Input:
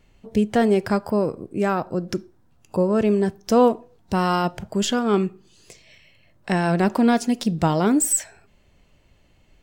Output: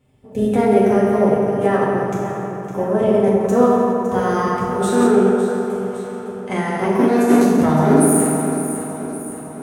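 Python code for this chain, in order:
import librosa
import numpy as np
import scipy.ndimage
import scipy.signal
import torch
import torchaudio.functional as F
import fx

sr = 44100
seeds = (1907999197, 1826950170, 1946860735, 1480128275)

p1 = fx.graphic_eq(x, sr, hz=(125, 500, 4000, 8000), db=(9, 3, -8, 4))
p2 = p1 + fx.echo_feedback(p1, sr, ms=559, feedback_pct=55, wet_db=-10, dry=0)
p3 = fx.rev_fdn(p2, sr, rt60_s=2.7, lf_ratio=1.0, hf_ratio=0.55, size_ms=23.0, drr_db=-8.0)
p4 = fx.formant_shift(p3, sr, semitones=3)
p5 = scipy.signal.sosfilt(scipy.signal.butter(2, 57.0, 'highpass', fs=sr, output='sos'), p4)
y = p5 * 10.0 ** (-8.0 / 20.0)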